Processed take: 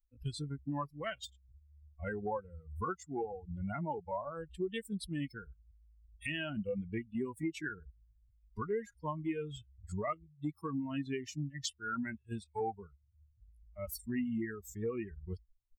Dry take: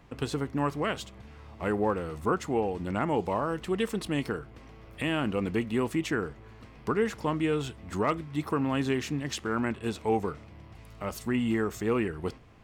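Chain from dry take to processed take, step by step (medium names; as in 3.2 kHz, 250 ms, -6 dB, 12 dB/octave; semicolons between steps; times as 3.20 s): expander on every frequency bin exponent 3; compression 3:1, threshold -44 dBFS, peak gain reduction 13.5 dB; tempo 0.8×; trim +7 dB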